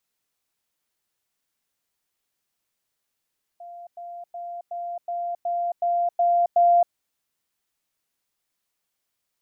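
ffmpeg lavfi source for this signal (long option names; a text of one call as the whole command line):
ffmpeg -f lavfi -i "aevalsrc='pow(10,(-37.5+3*floor(t/0.37))/20)*sin(2*PI*695*t)*clip(min(mod(t,0.37),0.27-mod(t,0.37))/0.005,0,1)':duration=3.33:sample_rate=44100" out.wav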